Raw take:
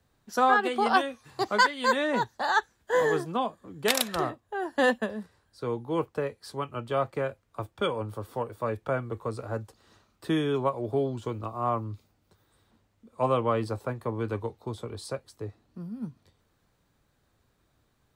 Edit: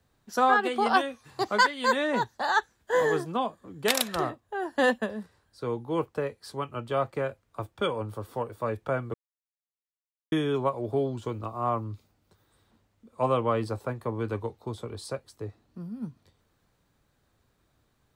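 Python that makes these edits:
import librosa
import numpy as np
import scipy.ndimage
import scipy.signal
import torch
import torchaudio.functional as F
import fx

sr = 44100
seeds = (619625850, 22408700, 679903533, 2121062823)

y = fx.edit(x, sr, fx.silence(start_s=9.14, length_s=1.18), tone=tone)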